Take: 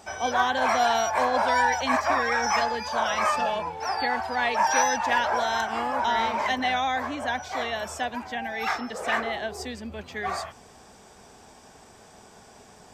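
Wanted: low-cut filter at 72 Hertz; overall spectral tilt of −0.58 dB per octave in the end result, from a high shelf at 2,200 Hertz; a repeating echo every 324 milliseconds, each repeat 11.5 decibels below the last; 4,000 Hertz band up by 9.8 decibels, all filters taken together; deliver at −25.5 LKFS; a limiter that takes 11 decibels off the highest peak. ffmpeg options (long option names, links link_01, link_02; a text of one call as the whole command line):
ffmpeg -i in.wav -af "highpass=72,highshelf=frequency=2200:gain=7,equalizer=frequency=4000:width_type=o:gain=6,alimiter=limit=-17dB:level=0:latency=1,aecho=1:1:324|648|972:0.266|0.0718|0.0194" out.wav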